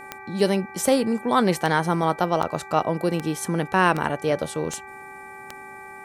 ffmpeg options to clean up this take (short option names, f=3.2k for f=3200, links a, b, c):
-af "adeclick=t=4,bandreject=f=389.3:t=h:w=4,bandreject=f=778.6:t=h:w=4,bandreject=f=1.1679k:t=h:w=4,bandreject=f=1.5572k:t=h:w=4,bandreject=f=1.9465k:t=h:w=4,bandreject=f=2.3358k:t=h:w=4,bandreject=f=850:w=30"